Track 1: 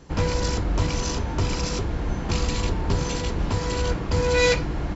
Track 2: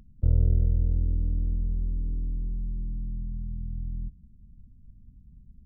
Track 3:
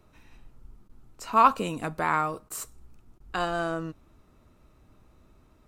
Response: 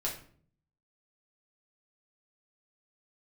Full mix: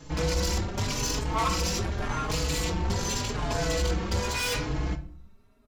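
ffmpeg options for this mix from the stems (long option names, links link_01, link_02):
-filter_complex "[0:a]highshelf=frequency=3300:gain=8,volume=0.5dB,asplit=2[link_01][link_02];[link_02]volume=-9.5dB[link_03];[1:a]volume=-13dB[link_04];[2:a]aecho=1:1:4.5:0.66,volume=-5.5dB,asplit=2[link_05][link_06];[link_06]volume=-5.5dB[link_07];[3:a]atrim=start_sample=2205[link_08];[link_03][link_07]amix=inputs=2:normalize=0[link_09];[link_09][link_08]afir=irnorm=-1:irlink=0[link_10];[link_01][link_04][link_05][link_10]amix=inputs=4:normalize=0,asoftclip=type=tanh:threshold=-21dB,asplit=2[link_11][link_12];[link_12]adelay=4.3,afreqshift=0.85[link_13];[link_11][link_13]amix=inputs=2:normalize=1"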